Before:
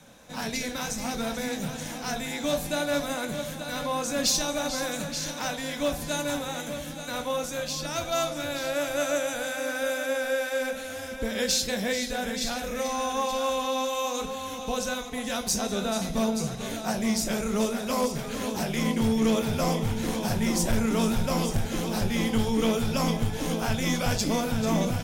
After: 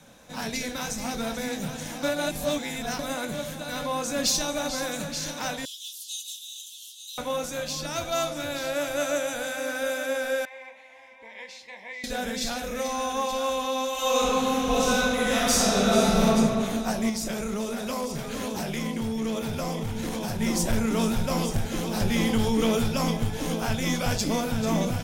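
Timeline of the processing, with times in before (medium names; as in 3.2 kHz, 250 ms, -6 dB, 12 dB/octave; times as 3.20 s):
2.03–2.99 s: reverse
5.65–7.18 s: steep high-pass 2.9 kHz 96 dB/octave
10.45–12.04 s: two resonant band-passes 1.4 kHz, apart 1.1 oct
13.92–16.25 s: reverb throw, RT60 2.4 s, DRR -7.5 dB
17.09–20.40 s: compression 4:1, threshold -26 dBFS
22.00–22.88 s: level flattener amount 50%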